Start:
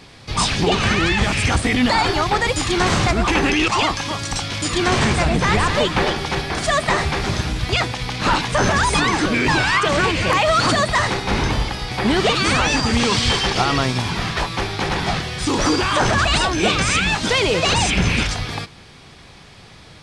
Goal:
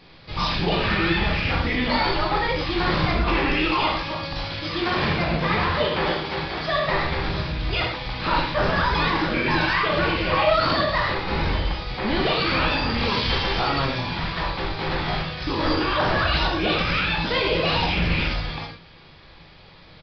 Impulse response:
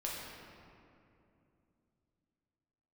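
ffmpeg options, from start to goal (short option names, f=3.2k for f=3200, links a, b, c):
-filter_complex "[0:a]asettb=1/sr,asplit=3[a][b][c];[a]atrim=end=4.614[d];[b]atrim=start=4.61:end=6.85,asetpts=PTS-STARTPTS,afade=t=in:d=0.004:c=qsin,afade=t=out:st=2.236:d=0.004:c=qsin,highpass=f=100:p=1[e];[c]atrim=start=6.846[f];[d][e]acrossfade=d=0.004:c1=hsin:c2=qsin[g];[g][f]acrossfade=d=0.004:c1=qsin:c2=hsin[h];[1:a]atrim=start_sample=2205,afade=t=out:st=0.18:d=0.01,atrim=end_sample=8379[i];[h][i]afir=irnorm=-1:irlink=0,aresample=11025,aresample=44100,volume=-4.5dB"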